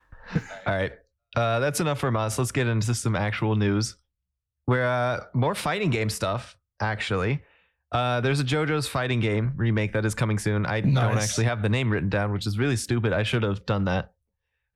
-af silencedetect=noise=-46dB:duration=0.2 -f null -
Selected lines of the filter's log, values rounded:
silence_start: 0.97
silence_end: 1.33 | silence_duration: 0.35
silence_start: 3.94
silence_end: 4.68 | silence_duration: 0.74
silence_start: 6.52
silence_end: 6.80 | silence_duration: 0.28
silence_start: 7.43
silence_end: 7.92 | silence_duration: 0.49
silence_start: 14.07
silence_end: 14.76 | silence_duration: 0.68